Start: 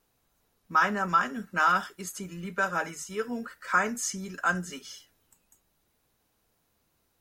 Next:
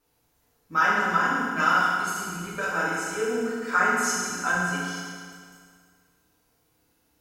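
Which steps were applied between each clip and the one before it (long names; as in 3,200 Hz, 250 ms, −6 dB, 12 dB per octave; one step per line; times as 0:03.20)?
feedback delay network reverb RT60 2 s, low-frequency decay 1×, high-frequency decay 0.9×, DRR −8 dB
level −4 dB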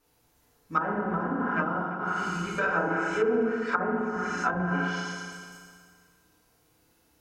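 treble cut that deepens with the level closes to 580 Hz, closed at −20.5 dBFS
echo through a band-pass that steps 114 ms, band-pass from 310 Hz, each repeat 1.4 octaves, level −9.5 dB
level +2.5 dB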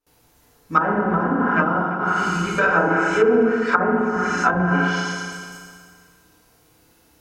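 noise gate with hold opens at −58 dBFS
level +9 dB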